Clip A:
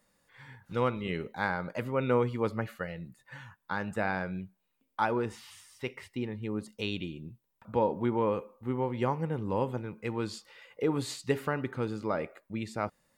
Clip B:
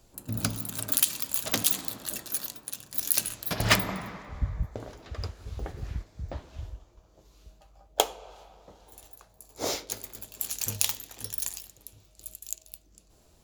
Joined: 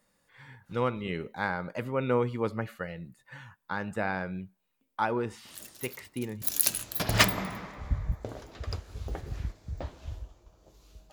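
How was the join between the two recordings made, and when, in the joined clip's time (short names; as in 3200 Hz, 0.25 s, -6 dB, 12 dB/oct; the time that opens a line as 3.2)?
clip A
5.45 add clip B from 1.96 s 0.97 s -11.5 dB
6.42 switch to clip B from 2.93 s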